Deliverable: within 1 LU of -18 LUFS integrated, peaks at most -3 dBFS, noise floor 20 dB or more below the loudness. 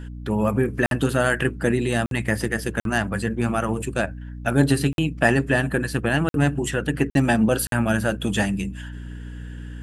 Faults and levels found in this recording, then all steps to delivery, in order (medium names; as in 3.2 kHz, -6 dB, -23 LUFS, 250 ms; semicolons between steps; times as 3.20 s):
dropouts 7; longest dropout 52 ms; hum 60 Hz; highest harmonic 300 Hz; hum level -34 dBFS; loudness -22.5 LUFS; peak level -3.0 dBFS; loudness target -18.0 LUFS
-> interpolate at 0.86/2.06/2.80/4.93/6.29/7.10/7.67 s, 52 ms; de-hum 60 Hz, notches 5; trim +4.5 dB; peak limiter -3 dBFS